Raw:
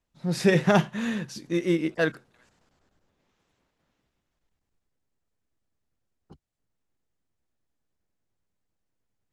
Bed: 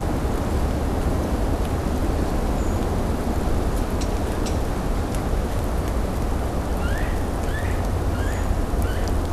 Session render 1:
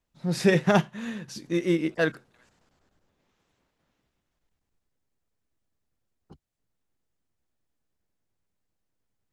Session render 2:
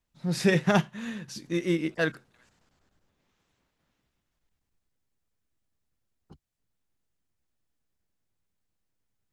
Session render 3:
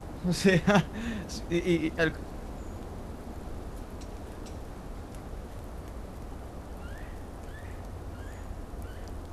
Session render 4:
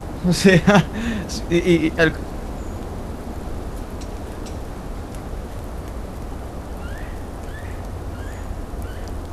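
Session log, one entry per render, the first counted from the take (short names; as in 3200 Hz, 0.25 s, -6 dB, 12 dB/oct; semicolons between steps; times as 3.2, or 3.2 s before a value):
0.55–1.28 upward expander, over -29 dBFS
bell 510 Hz -3.5 dB 2.2 oct
add bed -17.5 dB
gain +10.5 dB; limiter -1 dBFS, peak gain reduction 2.5 dB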